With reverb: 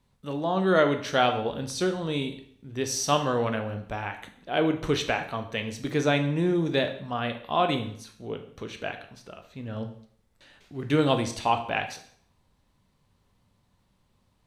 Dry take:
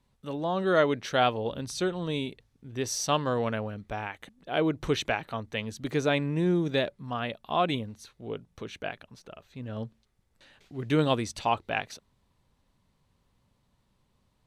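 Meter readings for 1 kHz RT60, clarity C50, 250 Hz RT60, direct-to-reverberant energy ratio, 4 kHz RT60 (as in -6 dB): 0.60 s, 10.5 dB, 0.55 s, 5.5 dB, 0.55 s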